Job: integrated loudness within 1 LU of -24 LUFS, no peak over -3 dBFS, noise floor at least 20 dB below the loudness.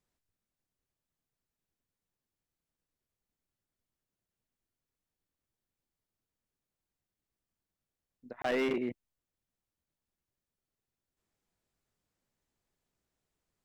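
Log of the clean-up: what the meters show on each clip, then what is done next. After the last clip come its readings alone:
clipped samples 0.3%; clipping level -26.5 dBFS; dropouts 1; longest dropout 23 ms; loudness -33.5 LUFS; peak level -26.5 dBFS; loudness target -24.0 LUFS
-> clip repair -26.5 dBFS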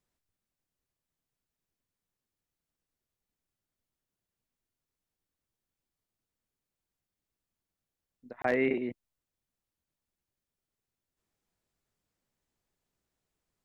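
clipped samples 0.0%; dropouts 1; longest dropout 23 ms
-> interpolate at 8.42 s, 23 ms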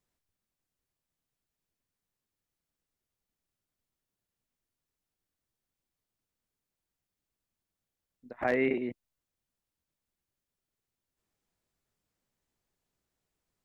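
dropouts 0; loudness -31.0 LUFS; peak level -17.5 dBFS; loudness target -24.0 LUFS
-> trim +7 dB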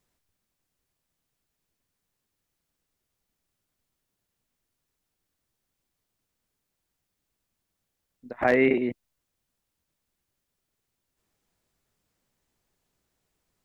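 loudness -24.0 LUFS; peak level -10.5 dBFS; noise floor -82 dBFS

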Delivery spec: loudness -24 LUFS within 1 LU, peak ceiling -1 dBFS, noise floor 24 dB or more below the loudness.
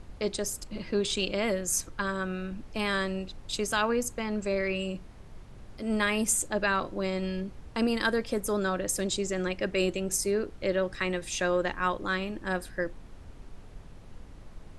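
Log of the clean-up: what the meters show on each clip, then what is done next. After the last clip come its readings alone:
noise floor -48 dBFS; noise floor target -54 dBFS; loudness -30.0 LUFS; peak level -12.5 dBFS; loudness target -24.0 LUFS
-> noise print and reduce 6 dB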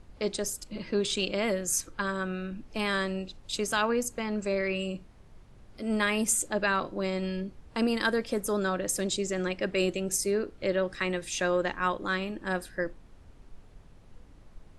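noise floor -54 dBFS; loudness -30.0 LUFS; peak level -12.5 dBFS; loudness target -24.0 LUFS
-> trim +6 dB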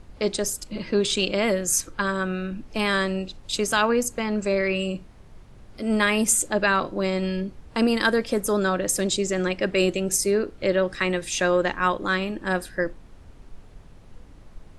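loudness -24.0 LUFS; peak level -6.5 dBFS; noise floor -48 dBFS

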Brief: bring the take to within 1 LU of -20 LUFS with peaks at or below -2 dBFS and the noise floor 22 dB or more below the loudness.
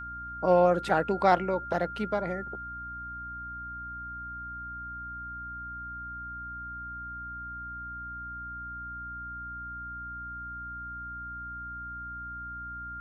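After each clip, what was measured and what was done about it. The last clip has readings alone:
hum 60 Hz; highest harmonic 300 Hz; hum level -44 dBFS; steady tone 1.4 kHz; tone level -37 dBFS; loudness -33.0 LUFS; peak level -9.5 dBFS; loudness target -20.0 LUFS
-> de-hum 60 Hz, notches 5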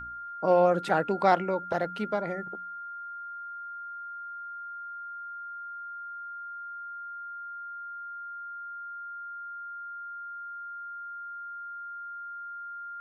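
hum not found; steady tone 1.4 kHz; tone level -37 dBFS
-> band-stop 1.4 kHz, Q 30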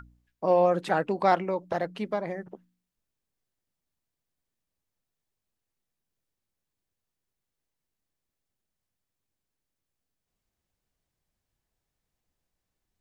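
steady tone not found; loudness -27.0 LUFS; peak level -10.0 dBFS; loudness target -20.0 LUFS
-> trim +7 dB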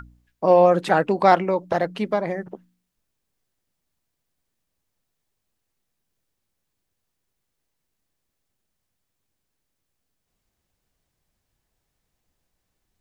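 loudness -20.0 LUFS; peak level -3.0 dBFS; noise floor -79 dBFS

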